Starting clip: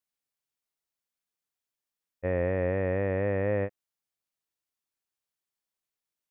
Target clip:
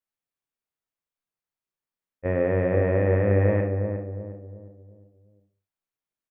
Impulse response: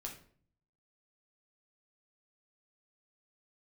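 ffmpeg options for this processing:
-filter_complex "[0:a]asettb=1/sr,asplit=3[link_01][link_02][link_03];[link_01]atrim=end=2.254[link_04];[link_02]atrim=start=2.25:end=3.61,asetpts=PTS-STARTPTS,afade=type=in:duration=0.004:curve=qsin,afade=type=out:start_time=1.356:duration=0.004:curve=qsin,acontrast=34[link_05];[link_03]atrim=start=3.606[link_06];[link_04][link_05]acrossfade=duration=0.004:curve1=hsin:curve2=qsin[link_07];[link_07][link_06]acrossfade=duration=0.004:curve1=qsin:curve2=hsin,asplit=2[link_08][link_09];[link_09]adelay=358,lowpass=frequency=840:poles=1,volume=-5dB,asplit=2[link_10][link_11];[link_11]adelay=358,lowpass=frequency=840:poles=1,volume=0.43,asplit=2[link_12][link_13];[link_13]adelay=358,lowpass=frequency=840:poles=1,volume=0.43,asplit=2[link_14][link_15];[link_15]adelay=358,lowpass=frequency=840:poles=1,volume=0.43,asplit=2[link_16][link_17];[link_17]adelay=358,lowpass=frequency=840:poles=1,volume=0.43[link_18];[link_08][link_10][link_12][link_14][link_16][link_18]amix=inputs=6:normalize=0,asplit=2[link_19][link_20];[1:a]atrim=start_sample=2205,afade=type=out:start_time=0.27:duration=0.01,atrim=end_sample=12348,lowpass=3100[link_21];[link_20][link_21]afir=irnorm=-1:irlink=0,volume=4.5dB[link_22];[link_19][link_22]amix=inputs=2:normalize=0,volume=-7dB"

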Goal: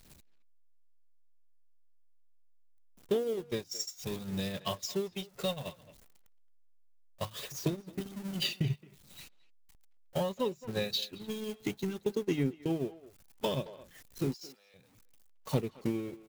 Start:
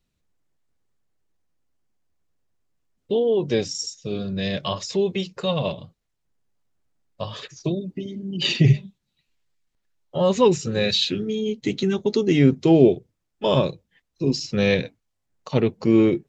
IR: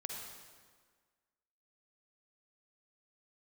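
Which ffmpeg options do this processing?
-filter_complex "[0:a]aeval=exprs='val(0)+0.5*0.0422*sgn(val(0))':channel_layout=same,crystalizer=i=1:c=0,acompressor=threshold=-27dB:ratio=10,asettb=1/sr,asplit=3[link_01][link_02][link_03];[link_01]atrim=end=14.344[link_04];[link_02]atrim=start=14.34:end=14.74,asetpts=PTS-STARTPTS,afade=type=in:duration=0.004:curve=qsin,afade=type=out:start_time=0.396:duration=0.004:curve=qsin,highpass=770[link_05];[link_03]atrim=start=14.736[link_06];[link_04][link_05]acrossfade=duration=0.004:curve1=hsin:curve2=qsin[link_07];[link_07][link_06]acrossfade=duration=0.004:curve1=qsin:curve2=hsin,agate=range=-28dB:threshold=-28dB:ratio=16:detection=peak,asplit=2[link_08][link_09];[link_09]adelay=220,highpass=300,lowpass=3400,asoftclip=type=hard:threshold=-27.5dB,volume=-17dB[link_10];[link_08][link_10]amix=inputs=2:normalize=0,aphaser=in_gain=1:out_gain=1:delay=1.5:decay=0.25:speed=0.65:type=sinusoidal"

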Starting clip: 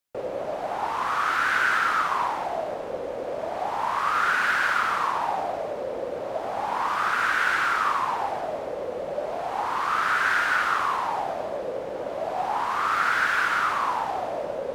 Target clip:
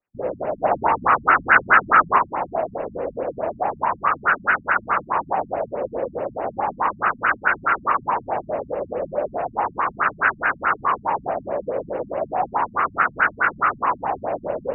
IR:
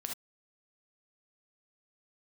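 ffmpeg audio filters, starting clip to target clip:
-filter_complex "[0:a]asettb=1/sr,asplit=3[link_01][link_02][link_03];[link_01]atrim=end=0.644[link_04];[link_02]atrim=start=0.64:end=2.19,asetpts=PTS-STARTPTS,afade=type=in:duration=0.004:curve=qsin,afade=type=out:start_time=1.546:duration=0.004:curve=qsin,acontrast=34[link_05];[link_03]atrim=start=2.186[link_06];[link_04][link_05]acrossfade=duration=0.004:curve1=hsin:curve2=qsin[link_07];[link_07][link_06]acrossfade=duration=0.004:curve1=qsin:curve2=hsin,afftfilt=real='re*lt(b*sr/1024,230*pow(3000/230,0.5+0.5*sin(2*PI*4.7*pts/sr)))':imag='im*lt(b*sr/1024,230*pow(3000/230,0.5+0.5*sin(2*PI*4.7*pts/sr)))':win_size=1024:overlap=0.75,volume=6.5dB"

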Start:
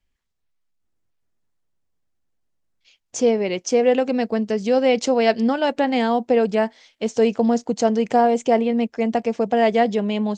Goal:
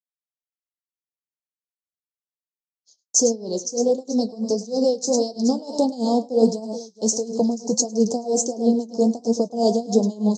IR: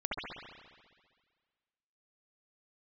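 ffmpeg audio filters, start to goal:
-filter_complex "[0:a]equalizer=frequency=6200:width=1.2:gain=15,acrossover=split=550|2300[link_01][link_02][link_03];[link_02]acompressor=threshold=-34dB:ratio=6[link_04];[link_01][link_04][link_03]amix=inputs=3:normalize=0,asuperstop=centerf=2100:order=8:qfactor=0.61,agate=range=-33dB:threshold=-44dB:ratio=3:detection=peak,highpass=120,asplit=2[link_05][link_06];[link_06]aecho=0:1:104|428:0.282|0.112[link_07];[link_05][link_07]amix=inputs=2:normalize=0,flanger=delay=8.3:depth=7.4:regen=51:speed=1.5:shape=triangular,dynaudnorm=framelen=110:gausssize=11:maxgain=10dB,tremolo=f=3.1:d=0.89"

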